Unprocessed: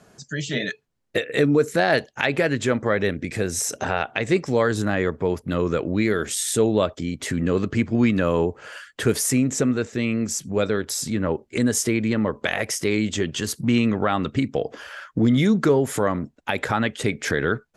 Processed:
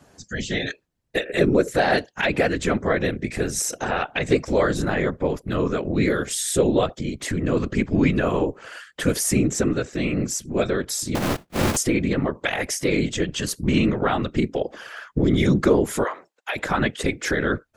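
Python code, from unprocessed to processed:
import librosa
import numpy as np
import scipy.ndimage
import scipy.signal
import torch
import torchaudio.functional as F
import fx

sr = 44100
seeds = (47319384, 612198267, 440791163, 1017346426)

y = fx.sample_sort(x, sr, block=256, at=(11.15, 11.77))
y = fx.bessel_highpass(y, sr, hz=760.0, order=8, at=(16.03, 16.55), fade=0.02)
y = fx.whisperise(y, sr, seeds[0])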